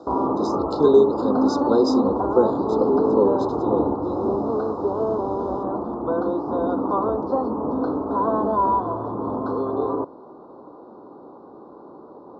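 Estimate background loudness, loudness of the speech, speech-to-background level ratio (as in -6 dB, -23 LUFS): -23.0 LUFS, -23.0 LUFS, 0.0 dB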